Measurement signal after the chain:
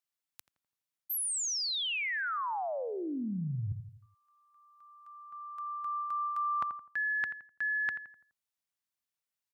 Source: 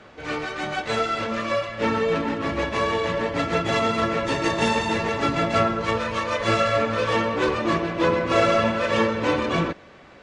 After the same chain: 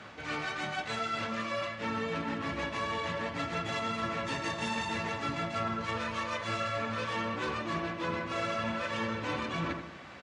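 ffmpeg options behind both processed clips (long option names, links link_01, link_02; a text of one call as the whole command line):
ffmpeg -i in.wav -filter_complex "[0:a]highpass=81,equalizer=frequency=430:width_type=o:width=1.2:gain=-8,asplit=2[link_01][link_02];[link_02]adelay=84,lowpass=frequency=1700:poles=1,volume=-12dB,asplit=2[link_03][link_04];[link_04]adelay=84,lowpass=frequency=1700:poles=1,volume=0.48,asplit=2[link_05][link_06];[link_06]adelay=84,lowpass=frequency=1700:poles=1,volume=0.48,asplit=2[link_07][link_08];[link_08]adelay=84,lowpass=frequency=1700:poles=1,volume=0.48,asplit=2[link_09][link_10];[link_10]adelay=84,lowpass=frequency=1700:poles=1,volume=0.48[link_11];[link_01][link_03][link_05][link_07][link_09][link_11]amix=inputs=6:normalize=0,areverse,acompressor=threshold=-35dB:ratio=4,areverse,volume=2dB" out.wav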